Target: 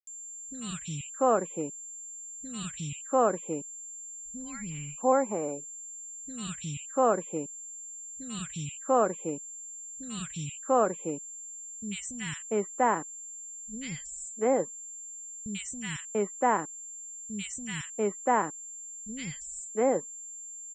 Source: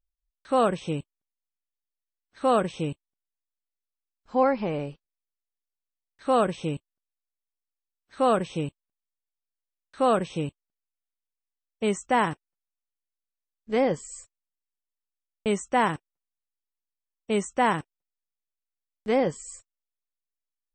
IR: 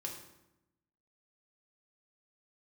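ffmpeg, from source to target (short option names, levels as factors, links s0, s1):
-filter_complex "[0:a]afftfilt=real='re*gte(hypot(re,im),0.00562)':imag='im*gte(hypot(re,im),0.00562)':win_size=1024:overlap=0.75,aeval=exprs='val(0)+0.0112*sin(2*PI*7300*n/s)':c=same,acrossover=split=200|2000[s0][s1][s2];[s2]adelay=90[s3];[s1]adelay=690[s4];[s0][s4][s3]amix=inputs=3:normalize=0,volume=0.841"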